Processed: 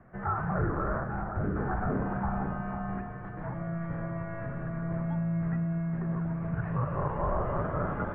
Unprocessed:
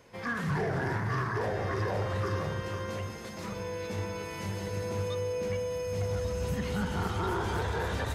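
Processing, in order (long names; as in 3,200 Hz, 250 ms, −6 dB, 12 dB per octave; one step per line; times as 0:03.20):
single-sideband voice off tune −330 Hz 170–2,000 Hz
0:01.04–0:01.56: dynamic equaliser 940 Hz, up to −8 dB, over −49 dBFS, Q 0.9
level +3.5 dB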